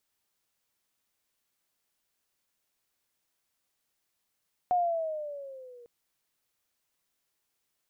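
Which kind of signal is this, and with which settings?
gliding synth tone sine, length 1.15 s, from 728 Hz, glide -7.5 st, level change -27 dB, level -21.5 dB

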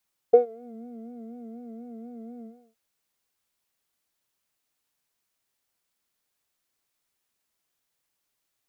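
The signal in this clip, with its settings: synth patch with vibrato A#4, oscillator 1 triangle, oscillator 2 triangle, interval +7 st, oscillator 2 level -1 dB, sub -14.5 dB, filter bandpass, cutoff 160 Hz, Q 6.6, filter envelope 1.5 oct, filter decay 0.41 s, filter sustain 35%, attack 8.5 ms, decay 0.12 s, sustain -22 dB, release 0.35 s, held 2.07 s, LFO 4.1 Hz, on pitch 82 cents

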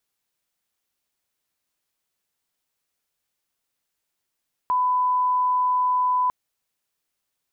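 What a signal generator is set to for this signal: line-up tone -18 dBFS 1.60 s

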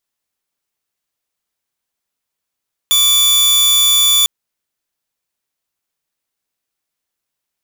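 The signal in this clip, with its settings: tone saw 3480 Hz -6.5 dBFS 1.35 s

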